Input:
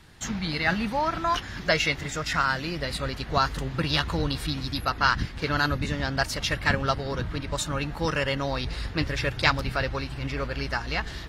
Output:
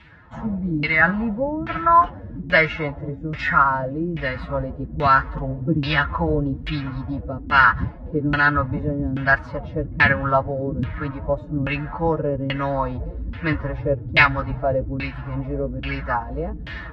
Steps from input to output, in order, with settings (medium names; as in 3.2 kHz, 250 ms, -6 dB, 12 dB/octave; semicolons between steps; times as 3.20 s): comb of notches 390 Hz; time stretch by phase-locked vocoder 1.5×; LFO low-pass saw down 1.2 Hz 240–2700 Hz; trim +4.5 dB